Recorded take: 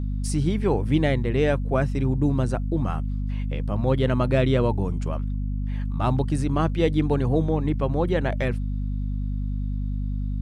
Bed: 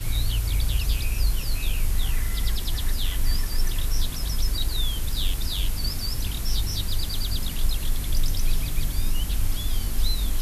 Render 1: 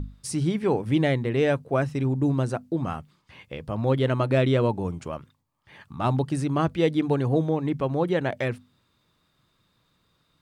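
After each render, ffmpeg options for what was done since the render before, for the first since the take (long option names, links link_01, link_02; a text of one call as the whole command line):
ffmpeg -i in.wav -af "bandreject=frequency=50:width_type=h:width=6,bandreject=frequency=100:width_type=h:width=6,bandreject=frequency=150:width_type=h:width=6,bandreject=frequency=200:width_type=h:width=6,bandreject=frequency=250:width_type=h:width=6" out.wav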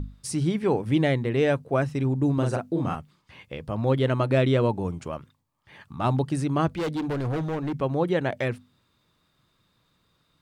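ffmpeg -i in.wav -filter_complex "[0:a]asettb=1/sr,asplit=3[link_01][link_02][link_03];[link_01]atrim=end=2.344[link_04];[link_02]atrim=start=2.34:end=2.95,asetpts=PTS-STARTPTS,afade=type=in:duration=0.004:curve=qsin,afade=type=out:start_time=0.606:duration=0.004:curve=qsin,asplit=2[link_05][link_06];[link_06]adelay=41,volume=-3dB[link_07];[link_05][link_07]amix=inputs=2:normalize=0,atrim=end_sample=26901[link_08];[link_03]atrim=start=2.946[link_09];[link_04][link_08]acrossfade=duration=0.004:curve1=hsin:curve2=qsin[link_10];[link_10][link_09]acrossfade=duration=0.004:curve1=qsin:curve2=hsin,asettb=1/sr,asplit=3[link_11][link_12][link_13];[link_11]atrim=end=6.764[link_14];[link_12]atrim=start=6.76:end=7.74,asetpts=PTS-STARTPTS,afade=type=in:duration=0.004:curve=qsin,afade=type=out:start_time=0.976:duration=0.004:curve=qsin,asoftclip=type=hard:threshold=-25dB[link_15];[link_13]atrim=start=7.736[link_16];[link_14][link_15]acrossfade=duration=0.004:curve1=hsin:curve2=qsin[link_17];[link_17][link_16]acrossfade=duration=0.004:curve1=qsin:curve2=hsin" out.wav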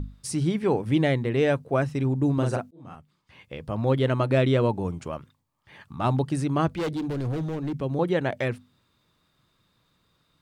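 ffmpeg -i in.wav -filter_complex "[0:a]asettb=1/sr,asplit=3[link_01][link_02][link_03];[link_01]atrim=end=6.934[link_04];[link_02]atrim=start=6.93:end=7.99,asetpts=PTS-STARTPTS,afade=type=in:duration=0.004:curve=qsin,afade=type=out:start_time=1.056:duration=0.004:curve=qsin,acrossover=split=480|3000[link_05][link_06][link_07];[link_06]acompressor=threshold=-53dB:ratio=1.5:attack=3.2:release=140:knee=2.83:detection=peak[link_08];[link_05][link_08][link_07]amix=inputs=3:normalize=0[link_09];[link_03]atrim=start=7.986[link_10];[link_04][link_09]acrossfade=duration=0.004:curve1=hsin:curve2=qsin[link_11];[link_11][link_10]acrossfade=duration=0.004:curve1=qsin:curve2=hsin,asplit=2[link_12][link_13];[link_12]atrim=end=2.71,asetpts=PTS-STARTPTS,afade=type=out:start_time=2.706:duration=0.004:curve=hsin[link_14];[link_13]atrim=start=2.71,asetpts=PTS-STARTPTS,afade=type=in:duration=1[link_15];[link_14][link_15]concat=n=2:v=0:a=1" out.wav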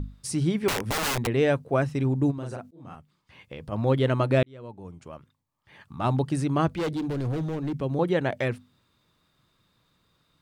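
ffmpeg -i in.wav -filter_complex "[0:a]asettb=1/sr,asplit=3[link_01][link_02][link_03];[link_01]atrim=end=0.684[link_04];[link_02]atrim=start=0.68:end=1.27,asetpts=PTS-STARTPTS,afade=type=in:duration=0.004:curve=qsin,afade=type=out:start_time=0.586:duration=0.004:curve=qsin,aeval=exprs='(mod(12.6*val(0)+1,2)-1)/12.6':channel_layout=same[link_05];[link_03]atrim=start=1.266[link_06];[link_04][link_05]acrossfade=duration=0.004:curve1=hsin:curve2=qsin[link_07];[link_07][link_06]acrossfade=duration=0.004:curve1=qsin:curve2=hsin,asplit=3[link_08][link_09][link_10];[link_08]afade=type=out:start_time=2.3:duration=0.02[link_11];[link_09]acompressor=threshold=-34dB:ratio=3:attack=3.2:release=140:knee=1:detection=peak,afade=type=in:start_time=2.3:duration=0.02,afade=type=out:start_time=3.71:duration=0.02[link_12];[link_10]afade=type=in:start_time=3.71:duration=0.02[link_13];[link_11][link_12][link_13]amix=inputs=3:normalize=0,asplit=2[link_14][link_15];[link_14]atrim=end=4.43,asetpts=PTS-STARTPTS,afade=type=out:start_time=4.426:duration=0.004:curve=hsin[link_16];[link_15]atrim=start=4.43,asetpts=PTS-STARTPTS,afade=type=in:duration=1.86[link_17];[link_16][link_17]concat=n=2:v=0:a=1" out.wav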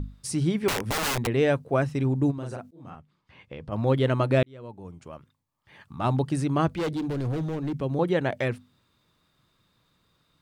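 ffmpeg -i in.wav -filter_complex "[0:a]asettb=1/sr,asplit=3[link_01][link_02][link_03];[link_01]atrim=end=2.904[link_04];[link_02]atrim=start=2.9:end=3.72,asetpts=PTS-STARTPTS,afade=type=in:duration=0.004:curve=qsin,afade=type=out:start_time=0.816:duration=0.004:curve=qsin,aemphasis=mode=reproduction:type=50fm[link_05];[link_03]atrim=start=3.716[link_06];[link_04][link_05]acrossfade=duration=0.004:curve1=hsin:curve2=qsin[link_07];[link_07][link_06]acrossfade=duration=0.004:curve1=qsin:curve2=hsin" out.wav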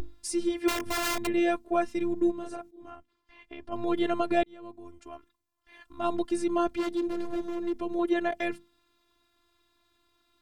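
ffmpeg -i in.wav -filter_complex "[0:a]afftfilt=real='hypot(re,im)*cos(PI*b)':imag='0':win_size=512:overlap=0.75,asplit=2[link_01][link_02];[link_02]asoftclip=type=tanh:threshold=-25dB,volume=-10dB[link_03];[link_01][link_03]amix=inputs=2:normalize=0" out.wav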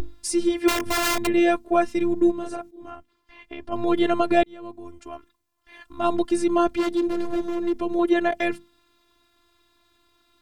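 ffmpeg -i in.wav -af "volume=6.5dB" out.wav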